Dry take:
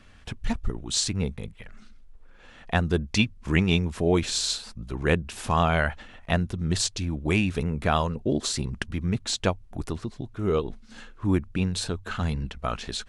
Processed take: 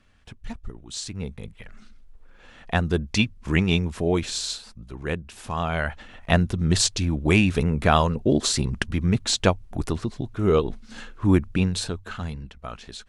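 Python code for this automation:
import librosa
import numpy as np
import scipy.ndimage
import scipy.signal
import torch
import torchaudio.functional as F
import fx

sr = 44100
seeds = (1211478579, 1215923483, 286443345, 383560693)

y = fx.gain(x, sr, db=fx.line((1.0, -8.0), (1.59, 1.0), (3.86, 1.0), (4.99, -5.5), (5.55, -5.5), (6.35, 5.0), (11.53, 5.0), (12.46, -7.0)))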